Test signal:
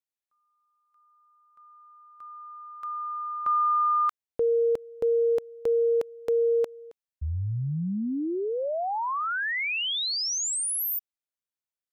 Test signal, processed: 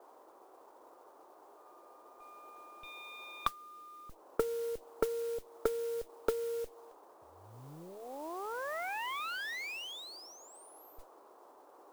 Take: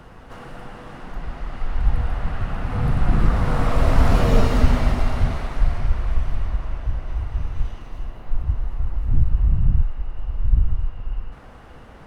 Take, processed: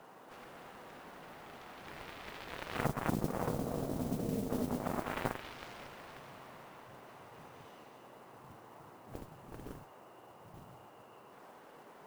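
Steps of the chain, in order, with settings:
Bessel high-pass filter 230 Hz, order 8
harmonic generator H 3 −42 dB, 7 −16 dB, 8 −30 dB, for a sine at −12 dBFS
downward compressor 16 to 1, threshold −32 dBFS
noise in a band 320–1,100 Hz −65 dBFS
treble cut that deepens with the level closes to 320 Hz, closed at −32.5 dBFS
noise that follows the level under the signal 17 dB
level +6.5 dB

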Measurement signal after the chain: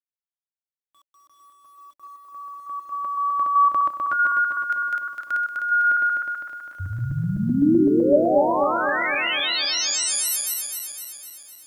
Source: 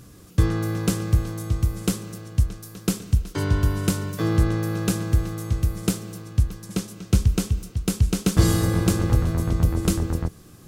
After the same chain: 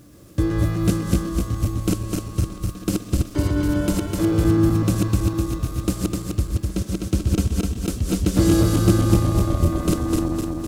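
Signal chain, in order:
feedback delay that plays each chunk backwards 127 ms, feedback 77%, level −1 dB
tuned comb filter 190 Hz, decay 1.3 s, mix 40%
bit-depth reduction 10 bits, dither none
hollow resonant body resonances 310/580 Hz, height 12 dB, ringing for 50 ms

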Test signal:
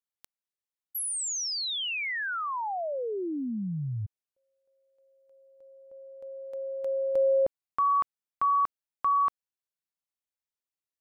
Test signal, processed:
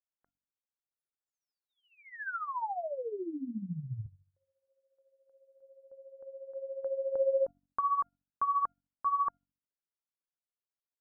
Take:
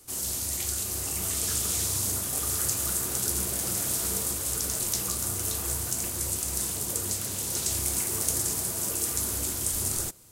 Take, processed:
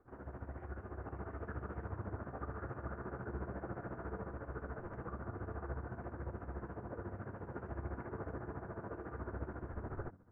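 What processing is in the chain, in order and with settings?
elliptic low-pass filter 1,600 Hz, stop band 60 dB
hum removal 47.03 Hz, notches 6
dynamic equaliser 920 Hz, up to +4 dB, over −46 dBFS, Q 5.6
tuned comb filter 700 Hz, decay 0.26 s, mix 40%
amplitude tremolo 14 Hz, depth 71%
level +2.5 dB

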